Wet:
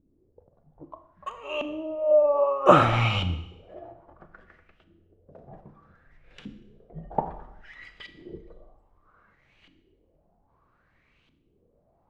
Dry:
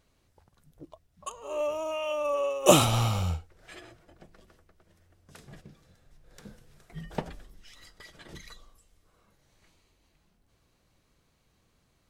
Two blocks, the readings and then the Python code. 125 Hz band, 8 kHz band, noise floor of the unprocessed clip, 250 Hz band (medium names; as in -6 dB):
+1.0 dB, under -20 dB, -70 dBFS, +1.5 dB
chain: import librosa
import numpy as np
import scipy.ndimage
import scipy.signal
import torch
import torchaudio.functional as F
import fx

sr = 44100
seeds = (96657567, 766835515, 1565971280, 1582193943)

y = fx.high_shelf(x, sr, hz=6100.0, db=10.5)
y = fx.filter_lfo_lowpass(y, sr, shape='saw_up', hz=0.62, low_hz=270.0, high_hz=3100.0, q=5.2)
y = fx.rev_schroeder(y, sr, rt60_s=0.83, comb_ms=26, drr_db=9.5)